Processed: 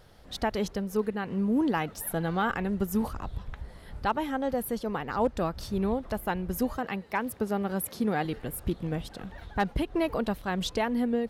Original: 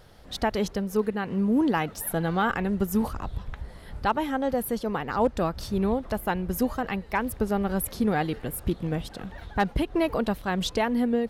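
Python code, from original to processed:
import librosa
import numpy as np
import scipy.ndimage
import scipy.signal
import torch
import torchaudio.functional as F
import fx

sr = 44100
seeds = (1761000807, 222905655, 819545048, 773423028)

y = fx.highpass(x, sr, hz=130.0, slope=12, at=(6.78, 8.25))
y = y * librosa.db_to_amplitude(-3.0)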